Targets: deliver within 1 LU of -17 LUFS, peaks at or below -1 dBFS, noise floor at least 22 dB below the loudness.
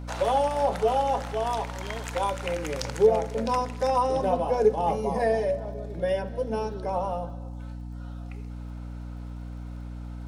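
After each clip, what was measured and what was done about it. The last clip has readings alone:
tick rate 34 per s; hum 60 Hz; highest harmonic 300 Hz; hum level -34 dBFS; loudness -26.5 LUFS; peak level -9.5 dBFS; loudness target -17.0 LUFS
-> de-click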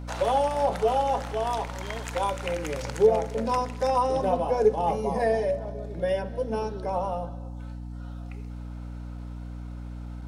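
tick rate 0.097 per s; hum 60 Hz; highest harmonic 300 Hz; hum level -34 dBFS
-> de-hum 60 Hz, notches 5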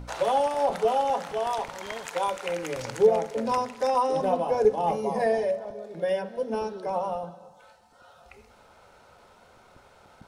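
hum not found; loudness -27.0 LUFS; peak level -9.5 dBFS; loudness target -17.0 LUFS
-> trim +10 dB; peak limiter -1 dBFS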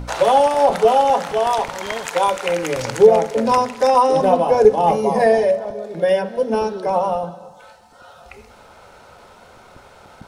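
loudness -17.0 LUFS; peak level -1.0 dBFS; noise floor -46 dBFS

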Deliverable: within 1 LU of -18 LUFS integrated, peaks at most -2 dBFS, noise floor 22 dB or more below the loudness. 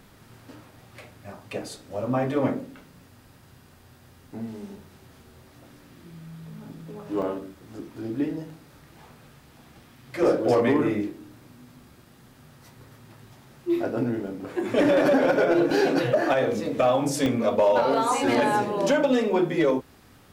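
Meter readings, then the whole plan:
clipped samples 0.2%; clipping level -13.5 dBFS; dropouts 5; longest dropout 1.4 ms; loudness -24.0 LUFS; peak level -13.5 dBFS; loudness target -18.0 LUFS
-> clip repair -13.5 dBFS; interpolate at 7.22/8.50/14.27/15.71/17.26 s, 1.4 ms; trim +6 dB

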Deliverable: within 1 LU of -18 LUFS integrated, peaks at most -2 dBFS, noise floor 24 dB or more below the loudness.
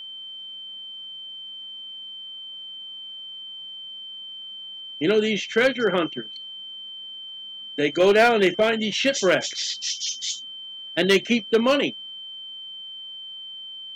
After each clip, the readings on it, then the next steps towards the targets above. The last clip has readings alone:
clipped samples 0.3%; clipping level -11.0 dBFS; steady tone 3.1 kHz; tone level -35 dBFS; loudness -25.0 LUFS; peak level -11.0 dBFS; loudness target -18.0 LUFS
-> clip repair -11 dBFS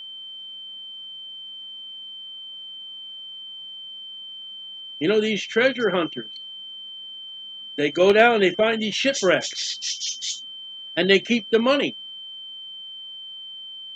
clipped samples 0.0%; steady tone 3.1 kHz; tone level -35 dBFS
-> band-stop 3.1 kHz, Q 30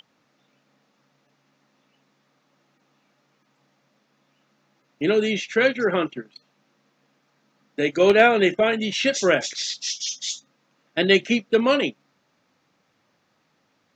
steady tone not found; loudness -21.0 LUFS; peak level -3.5 dBFS; loudness target -18.0 LUFS
-> trim +3 dB; peak limiter -2 dBFS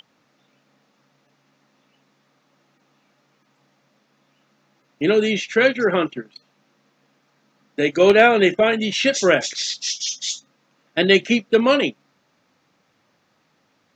loudness -18.5 LUFS; peak level -2.0 dBFS; noise floor -65 dBFS

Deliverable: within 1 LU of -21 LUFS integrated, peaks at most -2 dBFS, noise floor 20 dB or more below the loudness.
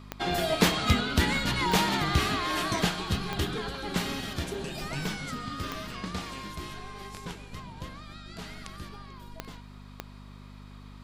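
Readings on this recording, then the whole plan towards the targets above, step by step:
clicks found 6; hum 50 Hz; highest harmonic 250 Hz; hum level -44 dBFS; loudness -29.0 LUFS; peak level -8.5 dBFS; loudness target -21.0 LUFS
-> de-click; de-hum 50 Hz, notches 5; trim +8 dB; peak limiter -2 dBFS

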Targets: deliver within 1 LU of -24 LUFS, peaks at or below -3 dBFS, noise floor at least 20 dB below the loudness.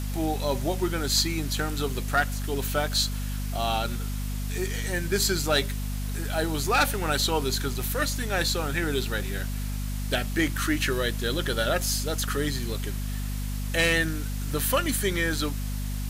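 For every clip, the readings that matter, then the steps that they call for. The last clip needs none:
hum 50 Hz; highest harmonic 250 Hz; hum level -28 dBFS; noise floor -30 dBFS; noise floor target -47 dBFS; loudness -27.0 LUFS; peak level -12.0 dBFS; loudness target -24.0 LUFS
-> hum notches 50/100/150/200/250 Hz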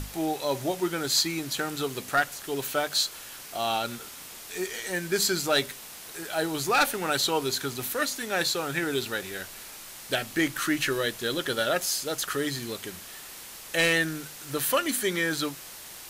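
hum not found; noise floor -44 dBFS; noise floor target -48 dBFS
-> noise reduction 6 dB, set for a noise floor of -44 dBFS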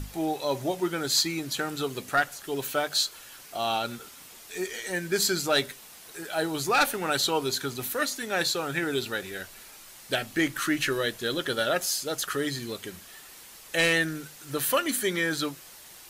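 noise floor -48 dBFS; loudness -27.5 LUFS; peak level -13.5 dBFS; loudness target -24.0 LUFS
-> trim +3.5 dB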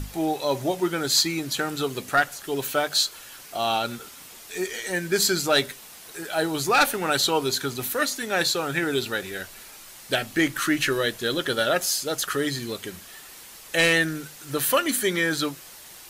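loudness -24.0 LUFS; peak level -10.0 dBFS; noise floor -45 dBFS

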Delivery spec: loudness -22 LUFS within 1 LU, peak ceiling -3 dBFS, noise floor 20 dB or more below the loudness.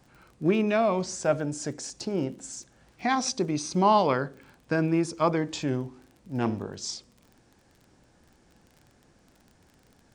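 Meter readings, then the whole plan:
tick rate 27 per s; loudness -27.5 LUFS; peak level -9.5 dBFS; loudness target -22.0 LUFS
-> de-click; trim +5.5 dB

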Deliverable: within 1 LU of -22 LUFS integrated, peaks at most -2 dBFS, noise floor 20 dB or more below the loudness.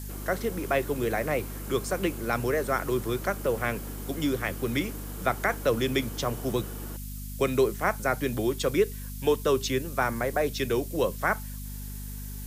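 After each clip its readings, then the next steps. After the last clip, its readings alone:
hum 50 Hz; highest harmonic 250 Hz; hum level -35 dBFS; noise floor -37 dBFS; noise floor target -49 dBFS; loudness -28.5 LUFS; peak level -11.5 dBFS; loudness target -22.0 LUFS
-> de-hum 50 Hz, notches 5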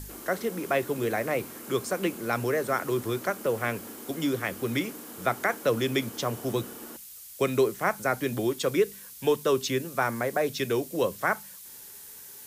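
hum not found; noise floor -46 dBFS; noise floor target -49 dBFS
-> noise print and reduce 6 dB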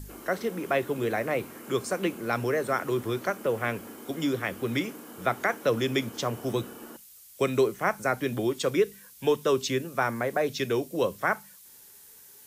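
noise floor -52 dBFS; loudness -28.5 LUFS; peak level -12.0 dBFS; loudness target -22.0 LUFS
-> trim +6.5 dB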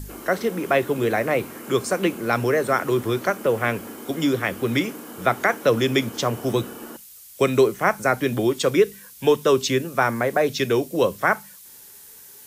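loudness -22.0 LUFS; peak level -5.5 dBFS; noise floor -45 dBFS

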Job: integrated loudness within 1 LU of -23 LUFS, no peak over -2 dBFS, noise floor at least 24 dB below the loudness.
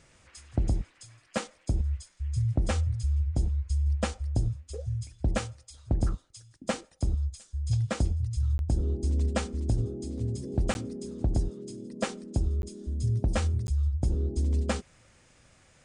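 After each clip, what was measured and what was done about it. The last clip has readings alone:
dropouts 4; longest dropout 11 ms; loudness -31.0 LUFS; peak level -17.5 dBFS; loudness target -23.0 LUFS
-> interpolate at 8.58/10.74/12.62/13.67 s, 11 ms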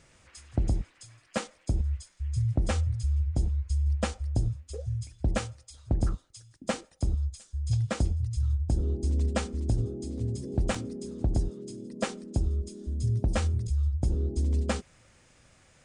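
dropouts 0; loudness -31.0 LUFS; peak level -17.5 dBFS; loudness target -23.0 LUFS
-> trim +8 dB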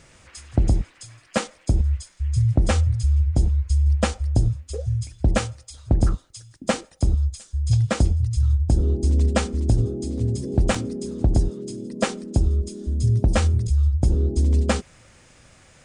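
loudness -23.0 LUFS; peak level -9.5 dBFS; noise floor -54 dBFS

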